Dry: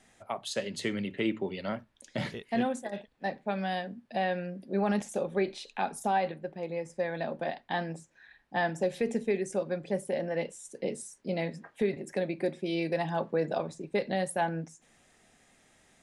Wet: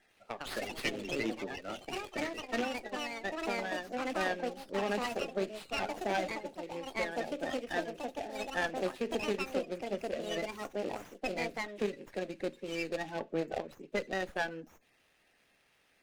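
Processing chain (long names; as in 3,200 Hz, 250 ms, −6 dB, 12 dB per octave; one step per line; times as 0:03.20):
spectral magnitudes quantised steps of 30 dB
harmonic generator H 3 −15 dB, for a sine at −17 dBFS
delay with pitch and tempo change per echo 168 ms, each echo +4 semitones, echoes 2
loudspeaker in its box 240–9,200 Hz, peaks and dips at 1,000 Hz −8 dB, 1,800 Hz +3 dB, 2,700 Hz +7 dB, 4,400 Hz +4 dB, 6,800 Hz +8 dB
windowed peak hold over 5 samples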